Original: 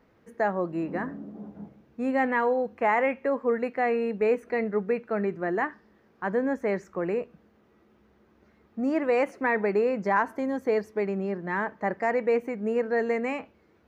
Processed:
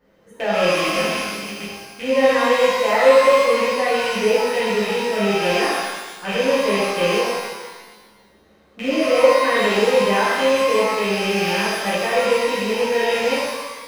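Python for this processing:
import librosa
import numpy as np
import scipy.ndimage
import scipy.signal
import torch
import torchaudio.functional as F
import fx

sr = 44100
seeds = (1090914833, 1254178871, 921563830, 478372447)

y = fx.rattle_buzz(x, sr, strikes_db=-39.0, level_db=-18.0)
y = fx.high_shelf(y, sr, hz=3600.0, db=6.5)
y = fx.small_body(y, sr, hz=(540.0, 3100.0), ring_ms=45, db=11)
y = fx.rev_shimmer(y, sr, seeds[0], rt60_s=1.3, semitones=12, shimmer_db=-8, drr_db=-10.5)
y = F.gain(torch.from_numpy(y), -7.0).numpy()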